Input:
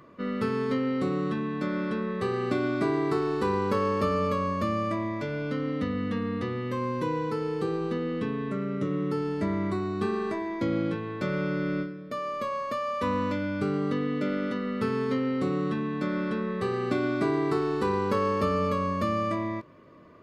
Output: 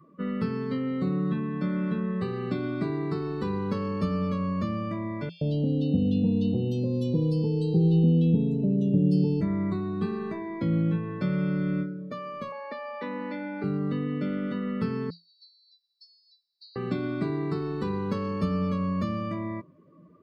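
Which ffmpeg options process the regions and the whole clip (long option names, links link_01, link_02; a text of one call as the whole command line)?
ffmpeg -i in.wav -filter_complex "[0:a]asettb=1/sr,asplit=3[link_01][link_02][link_03];[link_01]atrim=end=5.294[link_04];[link_02]atrim=start=5.29:end=9.41,asetpts=PTS-STARTPTS,afade=type=in:duration=0.004:curve=qsin,afade=type=out:start_time=4.116:duration=0.004:curve=qsin,asuperstop=centerf=1500:order=12:qfactor=0.85,acontrast=48,acrossover=split=1800[link_05][link_06];[link_05]adelay=120[link_07];[link_07][link_06]amix=inputs=2:normalize=0,atrim=end_sample=181692[link_08];[link_03]atrim=start=9.406[link_09];[link_04][link_08]acrossfade=duration=0.004:curve1=hsin:curve2=qsin[link_10];[link_10][link_09]acrossfade=duration=0.004:curve1=qsin:curve2=hsin,asettb=1/sr,asplit=3[link_11][link_12][link_13];[link_11]atrim=end=12.524[link_14];[link_12]atrim=start=12.52:end=13.64,asetpts=PTS-STARTPTS,afade=type=in:duration=0.004:curve=qsin,afade=type=out:start_time=1.116:duration=0.004:curve=qsin,aeval=exprs='val(0)+0.0126*sin(2*PI*850*n/s)':channel_layout=same,highpass=frequency=260:width=0.5412,highpass=frequency=260:width=1.3066,equalizer=frequency=1100:width_type=q:width=4:gain=-7,equalizer=frequency=1900:width_type=q:width=4:gain=7,equalizer=frequency=3100:width_type=q:width=4:gain=-5,lowpass=frequency=5300:width=0.5412,lowpass=frequency=5300:width=1.3066[link_15];[link_13]atrim=start=13.636[link_16];[link_14][link_15]acrossfade=duration=0.004:curve1=hsin:curve2=qsin[link_17];[link_17][link_16]acrossfade=duration=0.004:curve1=qsin:curve2=hsin,asettb=1/sr,asplit=3[link_18][link_19][link_20];[link_18]atrim=end=15.104[link_21];[link_19]atrim=start=15.1:end=16.76,asetpts=PTS-STARTPTS,afade=type=in:duration=0.004:curve=qsin,afade=type=out:start_time=1.656:duration=0.004:curve=qsin,acontrast=26,asuperpass=centerf=4700:order=12:qfactor=3.1[link_22];[link_20]atrim=start=16.756[link_23];[link_21][link_22]acrossfade=duration=0.004:curve1=hsin:curve2=qsin[link_24];[link_24][link_23]acrossfade=duration=0.004:curve1=qsin:curve2=hsin,afftdn=noise_reduction=17:noise_floor=-44,equalizer=frequency=170:width=6.8:gain=14.5,acrossover=split=290|3000[link_25][link_26][link_27];[link_26]acompressor=threshold=-37dB:ratio=3[link_28];[link_25][link_28][link_27]amix=inputs=3:normalize=0" out.wav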